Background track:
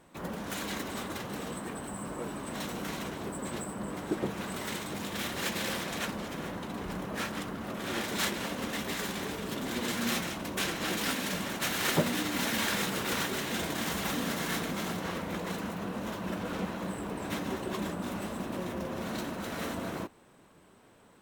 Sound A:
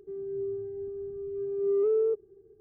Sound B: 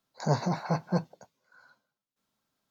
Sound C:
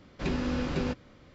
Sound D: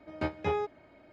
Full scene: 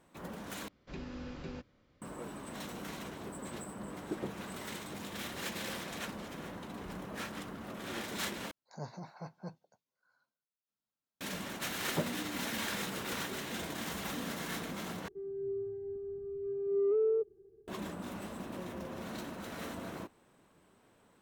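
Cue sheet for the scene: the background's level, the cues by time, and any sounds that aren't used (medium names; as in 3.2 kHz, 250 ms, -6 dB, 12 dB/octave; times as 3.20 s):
background track -6.5 dB
0.68 s: replace with C -13.5 dB
8.51 s: replace with B -17 dB
15.08 s: replace with A -4 dB
not used: D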